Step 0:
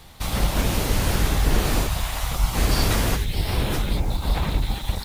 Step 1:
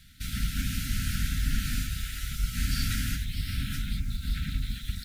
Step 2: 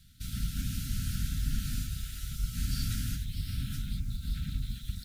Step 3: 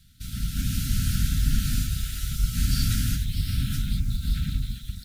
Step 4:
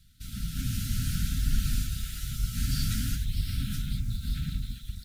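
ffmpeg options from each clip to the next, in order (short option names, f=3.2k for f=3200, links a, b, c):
-af "afftfilt=real='re*(1-between(b*sr/4096,280,1300))':imag='im*(1-between(b*sr/4096,280,1300))':win_size=4096:overlap=0.75,volume=-7.5dB"
-af "equalizer=f=125:t=o:w=1:g=4,equalizer=f=500:t=o:w=1:g=-9,equalizer=f=2k:t=o:w=1:g=-9,volume=-4dB"
-af "dynaudnorm=f=100:g=11:m=6.5dB,volume=2dB"
-af "flanger=delay=0.7:depth=9.2:regen=67:speed=0.6:shape=triangular"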